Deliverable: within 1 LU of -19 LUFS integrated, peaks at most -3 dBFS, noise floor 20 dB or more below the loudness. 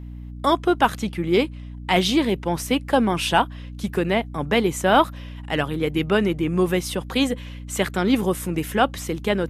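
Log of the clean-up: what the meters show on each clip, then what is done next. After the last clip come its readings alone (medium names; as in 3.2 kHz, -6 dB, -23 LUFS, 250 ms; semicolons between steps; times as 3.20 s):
hum 60 Hz; highest harmonic 300 Hz; hum level -33 dBFS; loudness -22.0 LUFS; peak level -4.0 dBFS; loudness target -19.0 LUFS
-> hum notches 60/120/180/240/300 Hz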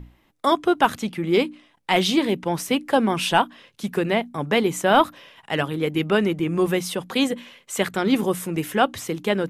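hum not found; loudness -22.5 LUFS; peak level -4.0 dBFS; loudness target -19.0 LUFS
-> trim +3.5 dB; peak limiter -3 dBFS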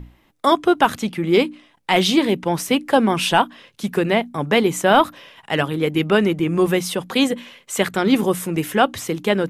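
loudness -19.0 LUFS; peak level -3.0 dBFS; noise floor -59 dBFS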